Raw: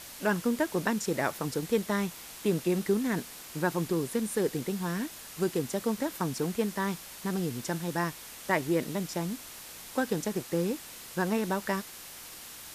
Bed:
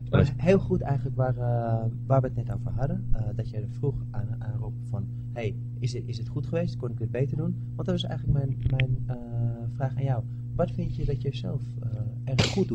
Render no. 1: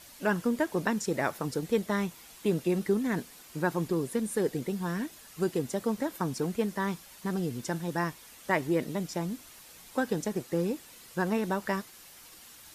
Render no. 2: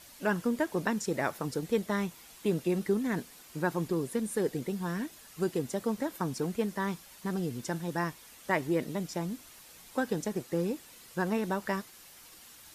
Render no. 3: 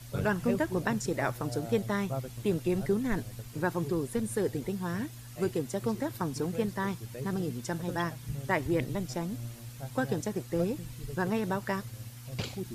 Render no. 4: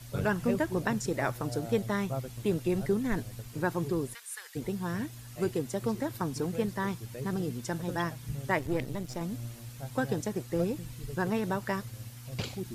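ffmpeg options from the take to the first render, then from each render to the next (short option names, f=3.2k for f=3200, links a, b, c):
-af "afftdn=nr=8:nf=-46"
-af "volume=-1.5dB"
-filter_complex "[1:a]volume=-12.5dB[a];[0:a][a]amix=inputs=2:normalize=0"
-filter_complex "[0:a]asplit=3[a][b][c];[a]afade=t=out:st=4.13:d=0.02[d];[b]highpass=f=1.2k:w=0.5412,highpass=f=1.2k:w=1.3066,afade=t=in:st=4.13:d=0.02,afade=t=out:st=4.55:d=0.02[e];[c]afade=t=in:st=4.55:d=0.02[f];[d][e][f]amix=inputs=3:normalize=0,asettb=1/sr,asplit=3[g][h][i];[g]atrim=end=8.594[j];[h]atrim=start=8.59:end=9.21,asetpts=PTS-STARTPTS,afade=t=in:d=0.004:c=qsin,afade=t=out:st=0.616:d=0.004:c=qsin,aeval=exprs='if(lt(val(0),0),0.447*val(0),val(0))':c=same[k];[i]atrim=start=9.206[l];[j][k]acrossfade=d=0.004:c1=hsin:c2=qsin[m];[m][l]acrossfade=d=0.004:c1=qsin:c2=hsin"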